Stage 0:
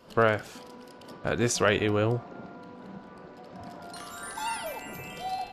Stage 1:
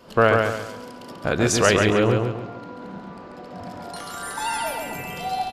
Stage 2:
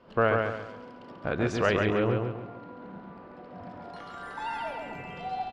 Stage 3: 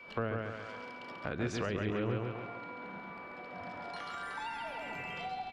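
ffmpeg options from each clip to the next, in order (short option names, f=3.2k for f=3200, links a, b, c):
-af "aecho=1:1:138|276|414|552|690:0.631|0.227|0.0818|0.0294|0.0106,volume=5.5dB"
-af "lowpass=2.7k,volume=-7dB"
-filter_complex "[0:a]tiltshelf=f=740:g=-6.5,aeval=exprs='val(0)+0.00316*sin(2*PI*2300*n/s)':c=same,acrossover=split=360[a][b];[b]acompressor=threshold=-38dB:ratio=8[c];[a][c]amix=inputs=2:normalize=0"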